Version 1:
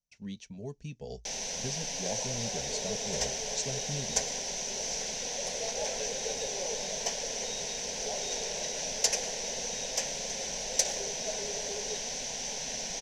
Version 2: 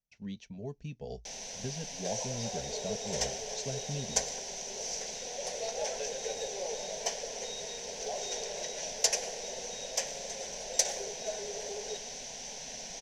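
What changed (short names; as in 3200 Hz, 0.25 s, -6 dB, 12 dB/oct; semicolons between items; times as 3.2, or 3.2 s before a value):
speech: add air absorption 100 m; first sound -6.5 dB; master: add bell 700 Hz +2.5 dB 0.31 oct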